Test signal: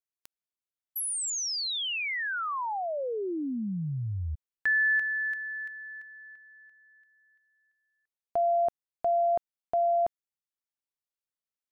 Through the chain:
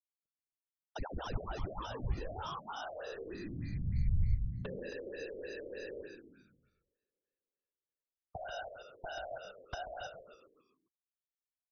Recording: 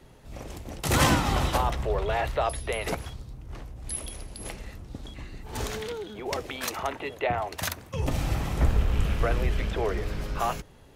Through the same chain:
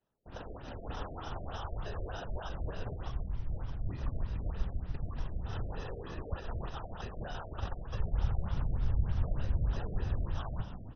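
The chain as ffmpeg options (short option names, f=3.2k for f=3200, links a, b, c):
-filter_complex "[0:a]lowpass=11k,agate=range=-27dB:threshold=-44dB:ratio=16:release=319:detection=rms,lowshelf=f=270:g=-9.5,acrusher=samples=20:mix=1:aa=0.000001,acompressor=threshold=-41dB:ratio=12:release=86:knee=1:detection=rms,afftfilt=real='hypot(re,im)*cos(2*PI*random(0))':imag='hypot(re,im)*sin(2*PI*random(1))':win_size=512:overlap=0.75,asubboost=boost=10.5:cutoff=84,asplit=7[a][b][c][d][e][f][g];[b]adelay=135,afreqshift=-67,volume=-7.5dB[h];[c]adelay=270,afreqshift=-134,volume=-13.5dB[i];[d]adelay=405,afreqshift=-201,volume=-19.5dB[j];[e]adelay=540,afreqshift=-268,volume=-25.6dB[k];[f]adelay=675,afreqshift=-335,volume=-31.6dB[l];[g]adelay=810,afreqshift=-402,volume=-37.6dB[m];[a][h][i][j][k][l][m]amix=inputs=7:normalize=0,afftfilt=real='re*lt(b*sr/1024,690*pow(6600/690,0.5+0.5*sin(2*PI*3.3*pts/sr)))':imag='im*lt(b*sr/1024,690*pow(6600/690,0.5+0.5*sin(2*PI*3.3*pts/sr)))':win_size=1024:overlap=0.75,volume=6dB"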